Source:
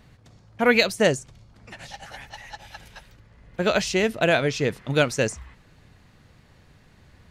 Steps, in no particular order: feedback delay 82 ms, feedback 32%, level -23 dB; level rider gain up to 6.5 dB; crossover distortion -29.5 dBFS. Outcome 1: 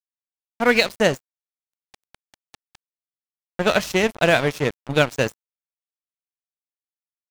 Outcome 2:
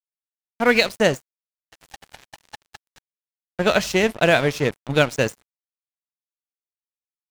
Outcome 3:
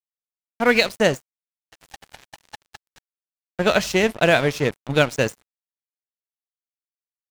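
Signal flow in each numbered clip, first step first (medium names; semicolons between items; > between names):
feedback delay > crossover distortion > level rider; level rider > feedback delay > crossover distortion; feedback delay > level rider > crossover distortion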